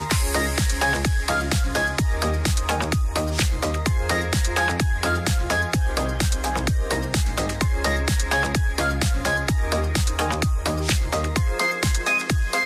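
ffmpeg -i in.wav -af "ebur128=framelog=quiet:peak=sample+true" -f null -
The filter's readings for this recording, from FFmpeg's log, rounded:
Integrated loudness:
  I:         -22.6 LUFS
  Threshold: -32.6 LUFS
Loudness range:
  LRA:         0.5 LU
  Threshold: -42.7 LUFS
  LRA low:   -23.0 LUFS
  LRA high:  -22.4 LUFS
Sample peak:
  Peak:      -11.6 dBFS
True peak:
  Peak:      -11.6 dBFS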